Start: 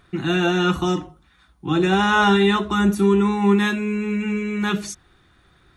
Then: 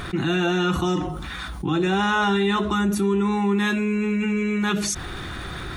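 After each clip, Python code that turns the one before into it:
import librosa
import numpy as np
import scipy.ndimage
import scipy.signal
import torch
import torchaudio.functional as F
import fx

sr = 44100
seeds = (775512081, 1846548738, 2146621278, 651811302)

y = fx.env_flatten(x, sr, amount_pct=70)
y = y * 10.0 ** (-6.0 / 20.0)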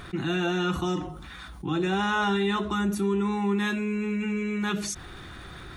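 y = fx.upward_expand(x, sr, threshold_db=-31.0, expansion=1.5)
y = y * 10.0 ** (-4.0 / 20.0)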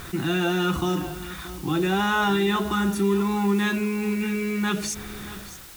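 y = fx.fade_out_tail(x, sr, length_s=0.52)
y = fx.quant_dither(y, sr, seeds[0], bits=8, dither='triangular')
y = y + 10.0 ** (-15.0 / 20.0) * np.pad(y, (int(626 * sr / 1000.0), 0))[:len(y)]
y = y * 10.0 ** (3.0 / 20.0)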